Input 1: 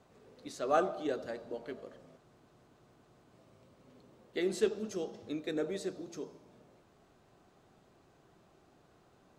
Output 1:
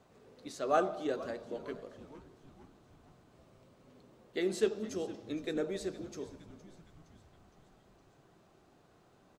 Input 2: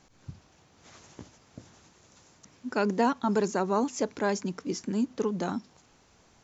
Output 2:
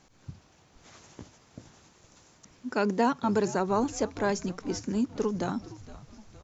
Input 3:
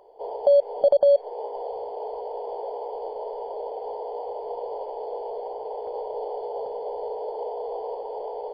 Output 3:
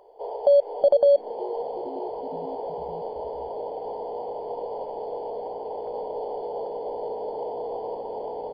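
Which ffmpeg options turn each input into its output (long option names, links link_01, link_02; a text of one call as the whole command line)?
ffmpeg -i in.wav -filter_complex "[0:a]asplit=6[link_01][link_02][link_03][link_04][link_05][link_06];[link_02]adelay=464,afreqshift=-100,volume=-17dB[link_07];[link_03]adelay=928,afreqshift=-200,volume=-21.9dB[link_08];[link_04]adelay=1392,afreqshift=-300,volume=-26.8dB[link_09];[link_05]adelay=1856,afreqshift=-400,volume=-31.6dB[link_10];[link_06]adelay=2320,afreqshift=-500,volume=-36.5dB[link_11];[link_01][link_07][link_08][link_09][link_10][link_11]amix=inputs=6:normalize=0" out.wav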